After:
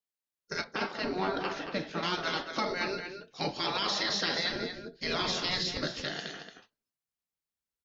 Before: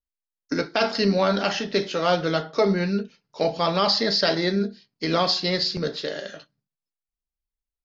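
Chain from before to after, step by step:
gate on every frequency bin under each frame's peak −10 dB weak
0:00.64–0:02.03: low-pass filter 1,100 Hz 6 dB per octave
0:04.50–0:05.77: low-shelf EQ 180 Hz +11.5 dB
brickwall limiter −21 dBFS, peak gain reduction 7.5 dB
slap from a distant wall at 39 metres, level −7 dB

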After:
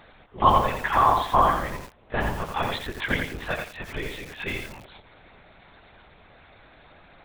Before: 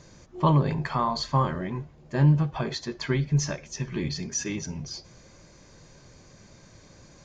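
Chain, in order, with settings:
high-pass filter 570 Hz 12 dB per octave
linear-prediction vocoder at 8 kHz whisper
feedback echo at a low word length 85 ms, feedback 35%, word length 8 bits, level −4 dB
level +8 dB

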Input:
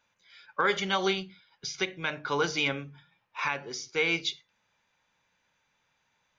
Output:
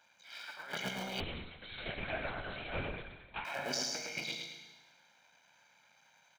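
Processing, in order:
sub-harmonics by changed cycles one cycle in 3, muted
Bessel high-pass filter 250 Hz, order 2
comb filter 1.3 ms, depth 63%
compressor whose output falls as the input rises −40 dBFS, ratio −1
repeating echo 109 ms, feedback 34%, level −4 dB
four-comb reverb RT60 1.3 s, combs from 32 ms, DRR 6 dB
0:01.20–0:03.45: linear-prediction vocoder at 8 kHz whisper
level −2.5 dB

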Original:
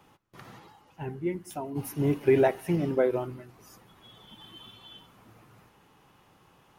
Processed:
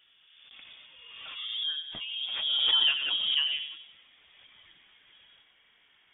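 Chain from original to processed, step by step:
gliding playback speed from 62% → 159%
voice inversion scrambler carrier 3,500 Hz
on a send: delay with a high-pass on its return 92 ms, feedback 43%, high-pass 1,600 Hz, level −8 dB
on the sum: background raised ahead of every attack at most 35 dB per second
level −4.5 dB

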